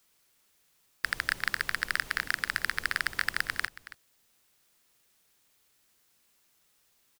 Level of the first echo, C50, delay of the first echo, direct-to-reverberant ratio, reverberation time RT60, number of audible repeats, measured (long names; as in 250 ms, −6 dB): −16.0 dB, no reverb audible, 276 ms, no reverb audible, no reverb audible, 1